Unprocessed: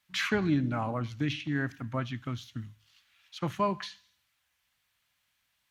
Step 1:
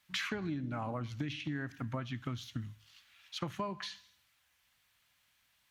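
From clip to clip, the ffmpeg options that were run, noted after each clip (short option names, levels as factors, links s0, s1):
-af "acompressor=threshold=0.0141:ratio=10,volume=1.41"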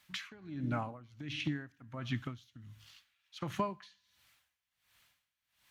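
-af "aeval=exprs='val(0)*pow(10,-22*(0.5-0.5*cos(2*PI*1.4*n/s))/20)':c=same,volume=1.78"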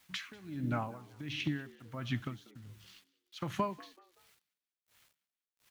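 -filter_complex "[0:a]acrusher=bits=10:mix=0:aa=0.000001,asplit=4[s0][s1][s2][s3];[s1]adelay=190,afreqshift=84,volume=0.0794[s4];[s2]adelay=380,afreqshift=168,volume=0.0295[s5];[s3]adelay=570,afreqshift=252,volume=0.0108[s6];[s0][s4][s5][s6]amix=inputs=4:normalize=0,volume=1.12"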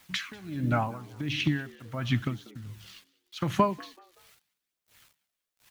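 -af "aphaser=in_gain=1:out_gain=1:delay=1.9:decay=0.26:speed=0.83:type=triangular,volume=2.37"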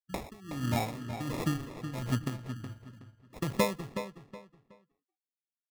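-filter_complex "[0:a]afftfilt=real='re*gte(hypot(re,im),0.00891)':imag='im*gte(hypot(re,im),0.00891)':win_size=1024:overlap=0.75,acrusher=samples=29:mix=1:aa=0.000001,asplit=2[s0][s1];[s1]adelay=370,lowpass=f=4800:p=1,volume=0.355,asplit=2[s2][s3];[s3]adelay=370,lowpass=f=4800:p=1,volume=0.28,asplit=2[s4][s5];[s5]adelay=370,lowpass=f=4800:p=1,volume=0.28[s6];[s0][s2][s4][s6]amix=inputs=4:normalize=0,volume=0.631"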